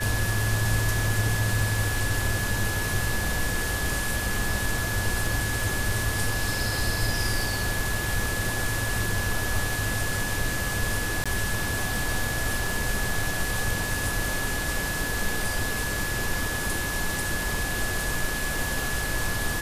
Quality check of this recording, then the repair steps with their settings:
crackle 23/s -33 dBFS
tone 1700 Hz -31 dBFS
11.24–11.26 gap 16 ms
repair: de-click; notch 1700 Hz, Q 30; interpolate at 11.24, 16 ms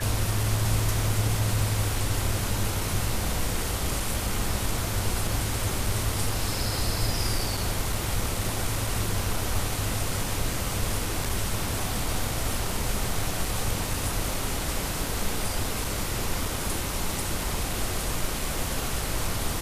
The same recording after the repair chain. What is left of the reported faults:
none

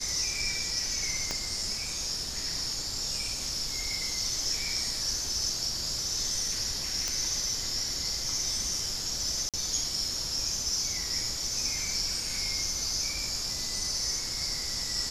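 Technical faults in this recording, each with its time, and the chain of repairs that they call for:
1.31 pop -15 dBFS
7.08 pop -15 dBFS
9.49–9.54 gap 47 ms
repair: de-click; interpolate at 9.49, 47 ms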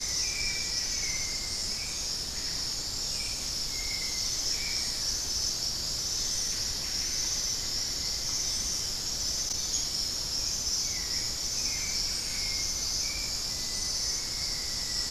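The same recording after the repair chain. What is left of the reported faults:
1.31 pop

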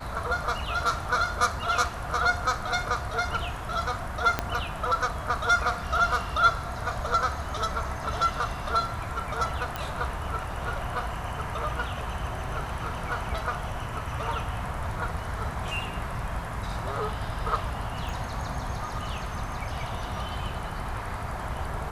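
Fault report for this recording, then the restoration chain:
4.39 pop -10 dBFS
9.76 pop -16 dBFS
18.09 pop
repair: de-click

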